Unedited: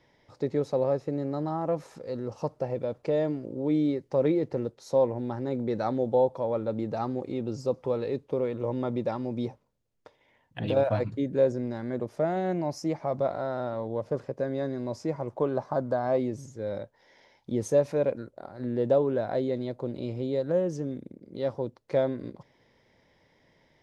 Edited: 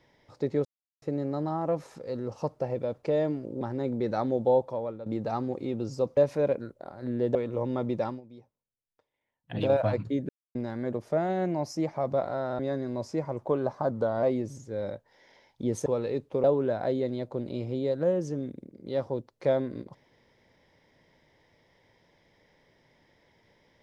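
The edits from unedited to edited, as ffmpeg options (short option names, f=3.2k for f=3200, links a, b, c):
-filter_complex "[0:a]asplit=16[a][b][c][d][e][f][g][h][i][j][k][l][m][n][o][p];[a]atrim=end=0.65,asetpts=PTS-STARTPTS,afade=t=out:st=0.646:d=0.004:c=hsin[q];[b]atrim=start=0.65:end=1.02,asetpts=PTS-STARTPTS,volume=0[r];[c]atrim=start=1.02:end=3.612,asetpts=PTS-STARTPTS,afade=t=in:d=0.004:c=hsin[s];[d]atrim=start=5.278:end=6.73,asetpts=PTS-STARTPTS,afade=t=out:st=0.992:d=0.46:silence=0.211349[t];[e]atrim=start=6.73:end=7.842,asetpts=PTS-STARTPTS,afade=t=in:d=0.004:c=hsin:silence=0.211349[u];[f]atrim=start=17.738:end=18.922[v];[g]atrim=start=8.418:end=9.28,asetpts=PTS-STARTPTS,afade=t=out:st=0.742:d=0.12:silence=0.11885[w];[h]atrim=start=9.28:end=10.52,asetpts=PTS-STARTPTS,volume=-18.5dB[x];[i]atrim=start=10.52:end=11.36,asetpts=PTS-STARTPTS,afade=t=in:d=0.12:silence=0.11885,afade=t=out:st=0.836:d=0.004:c=hsin[y];[j]atrim=start=11.36:end=11.62,asetpts=PTS-STARTPTS,volume=0[z];[k]atrim=start=11.62:end=13.662,asetpts=PTS-STARTPTS,afade=t=in:d=0.004:c=hsin[aa];[l]atrim=start=14.498:end=15.824[ab];[m]atrim=start=15.82:end=16.11,asetpts=PTS-STARTPTS,asetrate=40131,aresample=44100[ac];[n]atrim=start=16.106:end=17.742[ad];[o]atrim=start=7.838:end=8.422[ae];[p]atrim=start=18.918[af];[q][r][s]concat=n=3:v=0:a=1[ag];[t][u]concat=n=2:v=0:a=1[ah];[ag][ah]acrossfade=d=0.004:c1=hsin:c2=hsin[ai];[ai][v]acrossfade=d=0.004:c1=hsin:c2=hsin[aj];[w][x][y][z][aa]concat=n=5:v=0:a=1[ak];[aj][ak]acrossfade=d=0.004:c1=hsin:c2=hsin[al];[al][ab]acrossfade=d=0.004:c1=hsin:c2=hsin[am];[am][ac]acrossfade=d=0.004:c1=hsin:c2=hsin[an];[an][ad]acrossfade=d=0.004:c1=hsin:c2=hsin[ao];[ao][ae]acrossfade=d=0.004:c1=hsin:c2=hsin[ap];[ap][af]acrossfade=d=0.004:c1=hsin:c2=hsin"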